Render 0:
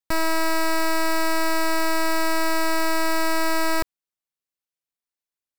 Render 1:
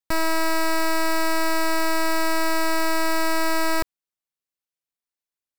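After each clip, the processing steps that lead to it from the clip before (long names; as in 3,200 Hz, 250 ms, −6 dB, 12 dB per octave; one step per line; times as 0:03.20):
no processing that can be heard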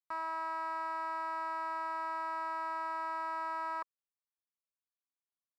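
resonant band-pass 1,100 Hz, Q 4.9
level −4 dB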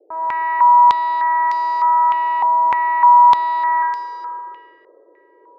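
noise in a band 330–550 Hz −63 dBFS
four-comb reverb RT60 2.7 s, combs from 32 ms, DRR −1 dB
low-pass on a step sequencer 3.3 Hz 800–4,900 Hz
level +6 dB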